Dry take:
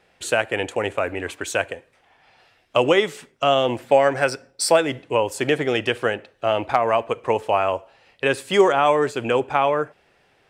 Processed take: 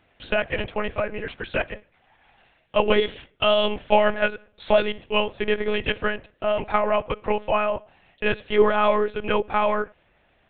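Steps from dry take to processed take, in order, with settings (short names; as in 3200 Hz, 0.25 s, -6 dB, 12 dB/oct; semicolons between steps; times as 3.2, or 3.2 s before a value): 3.01–5.23 bell 3100 Hz +7 dB 0.53 oct; monotone LPC vocoder at 8 kHz 210 Hz; gain -2 dB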